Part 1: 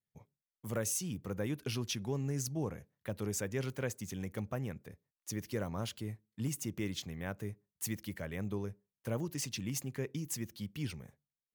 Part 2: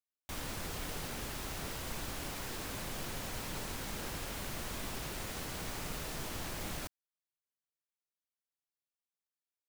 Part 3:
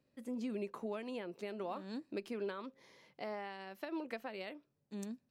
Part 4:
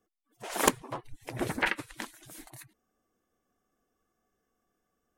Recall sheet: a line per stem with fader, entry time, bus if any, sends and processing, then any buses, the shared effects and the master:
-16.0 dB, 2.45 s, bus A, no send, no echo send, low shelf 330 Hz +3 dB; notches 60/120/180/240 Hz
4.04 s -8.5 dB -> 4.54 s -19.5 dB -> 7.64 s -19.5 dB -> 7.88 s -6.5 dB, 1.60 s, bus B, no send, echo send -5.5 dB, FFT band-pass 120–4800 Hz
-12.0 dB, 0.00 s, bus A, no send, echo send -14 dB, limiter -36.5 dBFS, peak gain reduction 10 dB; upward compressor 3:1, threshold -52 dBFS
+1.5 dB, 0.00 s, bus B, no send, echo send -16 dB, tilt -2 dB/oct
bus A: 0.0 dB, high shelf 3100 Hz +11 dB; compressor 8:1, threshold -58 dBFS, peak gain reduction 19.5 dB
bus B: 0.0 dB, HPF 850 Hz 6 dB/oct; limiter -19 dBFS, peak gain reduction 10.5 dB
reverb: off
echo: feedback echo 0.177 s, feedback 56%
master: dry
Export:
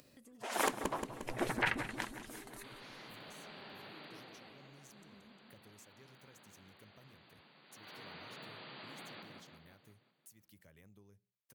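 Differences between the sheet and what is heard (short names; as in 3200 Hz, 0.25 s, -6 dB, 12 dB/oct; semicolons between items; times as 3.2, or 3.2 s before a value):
stem 2: entry 1.60 s -> 2.35 s; stem 3 -12.0 dB -> -3.5 dB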